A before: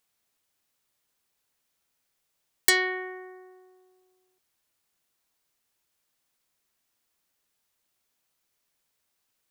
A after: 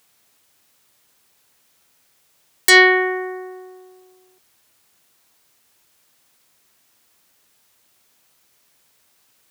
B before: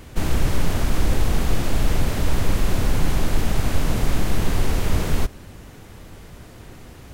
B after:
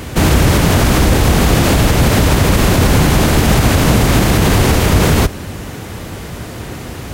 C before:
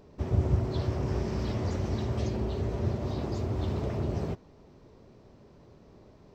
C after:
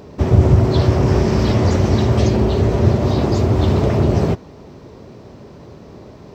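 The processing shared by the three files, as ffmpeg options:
-filter_complex "[0:a]highpass=61,asplit=2[a][b];[b]asoftclip=type=tanh:threshold=-14.5dB,volume=-8dB[c];[a][c]amix=inputs=2:normalize=0,alimiter=level_in=14.5dB:limit=-1dB:release=50:level=0:latency=1,volume=-1dB"

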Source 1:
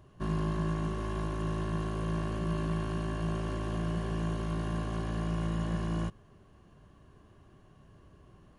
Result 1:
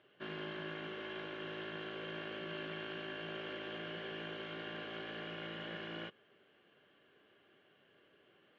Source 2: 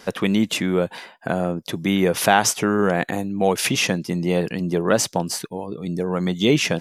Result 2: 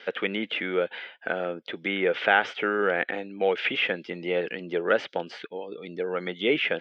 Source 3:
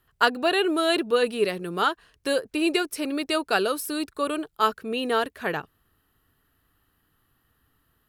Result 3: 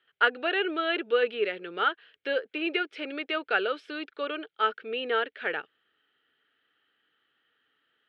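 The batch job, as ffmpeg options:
-filter_complex "[0:a]highpass=450,equalizer=f=470:t=q:w=4:g=3,equalizer=f=690:t=q:w=4:g=-5,equalizer=f=990:t=q:w=4:g=-9,equalizer=f=1.5k:t=q:w=4:g=4,equalizer=f=2.2k:t=q:w=4:g=6,equalizer=f=3.2k:t=q:w=4:g=9,lowpass=f=3.6k:w=0.5412,lowpass=f=3.6k:w=1.3066,acrossover=split=2500[a][b];[b]acompressor=threshold=-42dB:ratio=4:attack=1:release=60[c];[a][c]amix=inputs=2:normalize=0,bandreject=f=1.1k:w=11,volume=-2dB"

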